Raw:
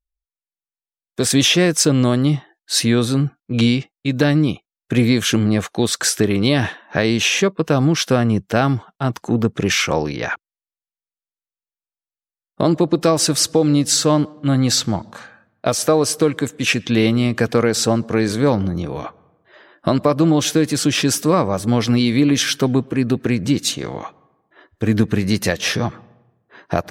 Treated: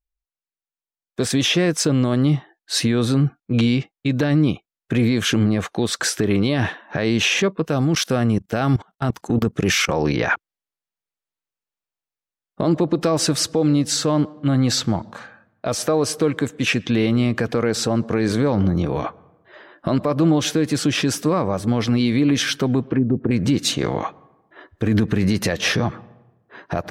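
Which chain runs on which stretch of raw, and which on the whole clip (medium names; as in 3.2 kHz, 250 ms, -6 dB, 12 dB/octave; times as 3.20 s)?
7.65–9.89 s: treble shelf 6.6 kHz +11.5 dB + level held to a coarse grid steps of 21 dB + band-stop 1 kHz, Q 18
22.87–23.31 s: low-pass that closes with the level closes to 460 Hz, closed at -14.5 dBFS + steep low-pass 5.4 kHz
whole clip: treble shelf 4.7 kHz -8.5 dB; gain riding 2 s; peak limiter -10 dBFS; trim +1 dB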